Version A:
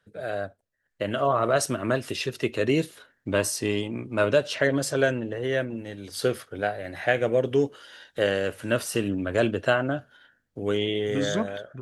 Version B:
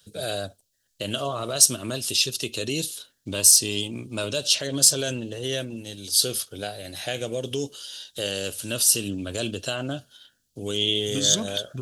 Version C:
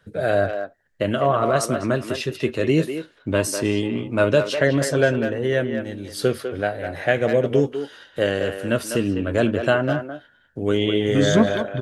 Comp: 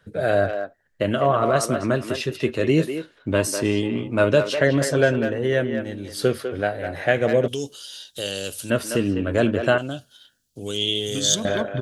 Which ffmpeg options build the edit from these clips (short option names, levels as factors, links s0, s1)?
-filter_complex "[1:a]asplit=2[s0][s1];[2:a]asplit=3[s2][s3][s4];[s2]atrim=end=7.482[s5];[s0]atrim=start=7.478:end=8.702[s6];[s3]atrim=start=8.698:end=9.782[s7];[s1]atrim=start=9.778:end=11.452[s8];[s4]atrim=start=11.448[s9];[s5][s6]acrossfade=d=0.004:c1=hsin:c2=hsin[s10];[s10][s7]acrossfade=d=0.004:c1=hsin:c2=hsin[s11];[s11][s8]acrossfade=d=0.004:c1=hsin:c2=hsin[s12];[s12][s9]acrossfade=d=0.004:c1=hsin:c2=hsin"